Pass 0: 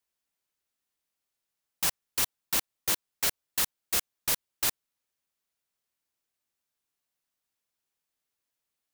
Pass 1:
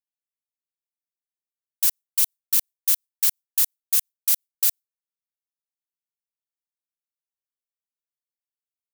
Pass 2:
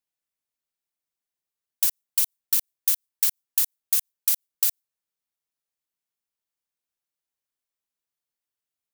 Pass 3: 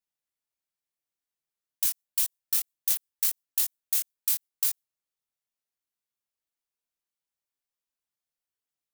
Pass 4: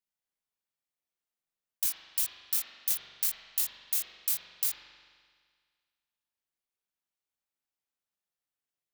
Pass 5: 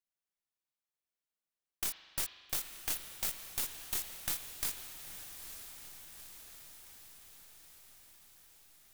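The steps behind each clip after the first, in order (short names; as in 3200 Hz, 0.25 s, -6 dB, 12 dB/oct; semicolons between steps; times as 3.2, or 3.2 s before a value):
gate with hold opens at -28 dBFS; pre-emphasis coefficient 0.9; gain +5 dB
compressor, threshold -23 dBFS, peak gain reduction 8.5 dB; gain +4.5 dB
chorus voices 2, 0.86 Hz, delay 22 ms, depth 4.5 ms
reverb RT60 1.8 s, pre-delay 42 ms, DRR 0.5 dB; gain -3.5 dB
tracing distortion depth 0.041 ms; diffused feedback echo 0.904 s, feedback 64%, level -10 dB; gain -4.5 dB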